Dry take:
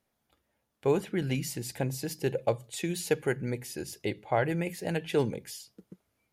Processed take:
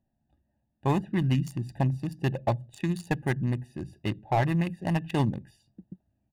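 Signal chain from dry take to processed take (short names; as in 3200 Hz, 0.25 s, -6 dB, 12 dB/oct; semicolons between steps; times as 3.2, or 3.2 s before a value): Wiener smoothing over 41 samples; comb 1.1 ms, depth 82%; slew limiter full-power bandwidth 55 Hz; gain +3.5 dB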